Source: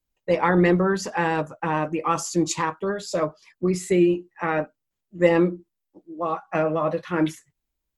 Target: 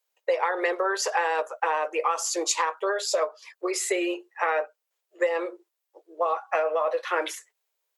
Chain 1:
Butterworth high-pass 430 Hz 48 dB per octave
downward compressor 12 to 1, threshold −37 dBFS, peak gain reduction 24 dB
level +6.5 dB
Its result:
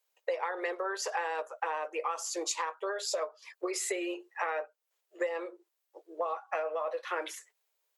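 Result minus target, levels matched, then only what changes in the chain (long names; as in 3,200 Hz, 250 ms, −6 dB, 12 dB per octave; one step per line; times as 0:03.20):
downward compressor: peak gain reduction +8.5 dB
change: downward compressor 12 to 1, threshold −27.5 dBFS, peak gain reduction 15 dB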